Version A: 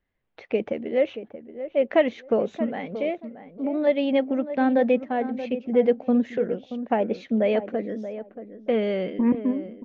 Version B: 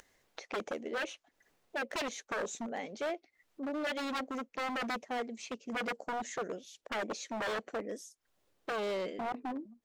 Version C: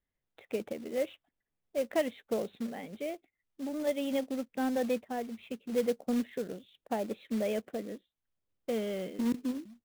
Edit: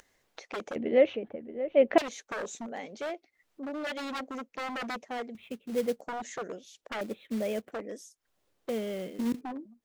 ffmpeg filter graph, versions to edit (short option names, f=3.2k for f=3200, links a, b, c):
-filter_complex "[2:a]asplit=3[a][b][c];[1:a]asplit=5[d][e][f][g][h];[d]atrim=end=0.762[i];[0:a]atrim=start=0.758:end=1.982[j];[e]atrim=start=1.978:end=5.352[k];[a]atrim=start=5.348:end=6.012[l];[f]atrim=start=6.008:end=7.012[m];[b]atrim=start=7.008:end=7.722[n];[g]atrim=start=7.718:end=8.692[o];[c]atrim=start=8.688:end=9.412[p];[h]atrim=start=9.408[q];[i][j]acrossfade=d=0.004:c1=hsin:c2=hsin[r];[r][k]acrossfade=d=0.004:c1=hsin:c2=hsin[s];[s][l]acrossfade=d=0.004:c1=hsin:c2=hsin[t];[t][m]acrossfade=d=0.004:c1=hsin:c2=hsin[u];[u][n]acrossfade=d=0.004:c1=hsin:c2=hsin[v];[v][o]acrossfade=d=0.004:c1=hsin:c2=hsin[w];[w][p]acrossfade=d=0.004:c1=hsin:c2=hsin[x];[x][q]acrossfade=d=0.004:c1=hsin:c2=hsin"